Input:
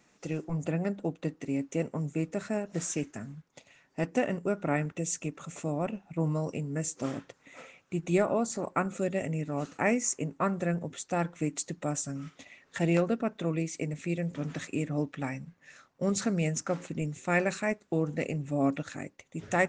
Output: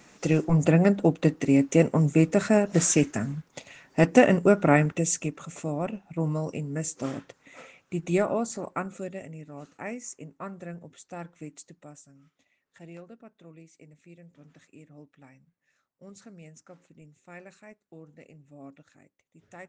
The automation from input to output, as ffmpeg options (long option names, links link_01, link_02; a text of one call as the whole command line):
ffmpeg -i in.wav -af "volume=11dB,afade=type=out:start_time=4.47:duration=1:silence=0.334965,afade=type=out:start_time=8.24:duration=1.06:silence=0.281838,afade=type=out:start_time=11.4:duration=0.68:silence=0.334965" out.wav